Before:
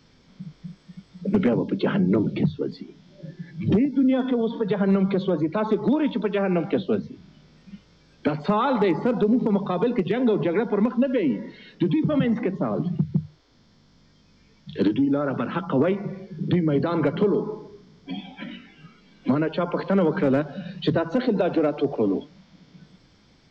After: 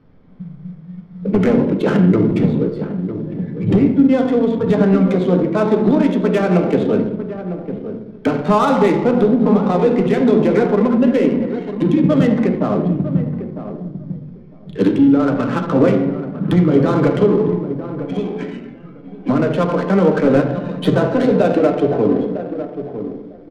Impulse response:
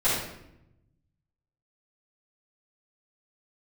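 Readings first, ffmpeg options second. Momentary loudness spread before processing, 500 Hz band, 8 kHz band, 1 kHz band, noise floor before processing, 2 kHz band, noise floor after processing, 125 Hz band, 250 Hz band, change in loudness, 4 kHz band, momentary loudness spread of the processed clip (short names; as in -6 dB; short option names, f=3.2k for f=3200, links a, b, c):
16 LU, +8.5 dB, n/a, +7.5 dB, -57 dBFS, +6.5 dB, -38 dBFS, +8.5 dB, +8.0 dB, +7.5 dB, +3.5 dB, 14 LU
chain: -filter_complex "[0:a]asplit=2[a][b];[b]adelay=952,lowpass=f=1.1k:p=1,volume=-10dB,asplit=2[c][d];[d]adelay=952,lowpass=f=1.1k:p=1,volume=0.17[e];[a][c][e]amix=inputs=3:normalize=0,asplit=2[f][g];[1:a]atrim=start_sample=2205,lowpass=4.8k[h];[g][h]afir=irnorm=-1:irlink=0,volume=-15.5dB[i];[f][i]amix=inputs=2:normalize=0,adynamicsmooth=sensitivity=4:basefreq=1.2k,volume=4.5dB"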